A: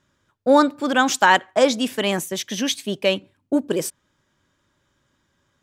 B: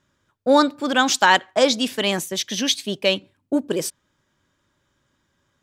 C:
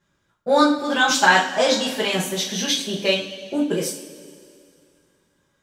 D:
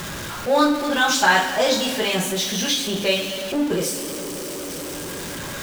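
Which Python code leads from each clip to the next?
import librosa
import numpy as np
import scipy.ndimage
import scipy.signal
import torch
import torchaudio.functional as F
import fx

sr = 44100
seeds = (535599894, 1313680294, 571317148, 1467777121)

y1 = fx.dynamic_eq(x, sr, hz=4300.0, q=1.2, threshold_db=-39.0, ratio=4.0, max_db=7)
y1 = F.gain(torch.from_numpy(y1), -1.0).numpy()
y2 = fx.rev_double_slope(y1, sr, seeds[0], early_s=0.39, late_s=2.5, knee_db=-18, drr_db=-7.0)
y2 = F.gain(torch.from_numpy(y2), -7.0).numpy()
y3 = y2 + 0.5 * 10.0 ** (-22.5 / 20.0) * np.sign(y2)
y3 = F.gain(torch.from_numpy(y3), -2.5).numpy()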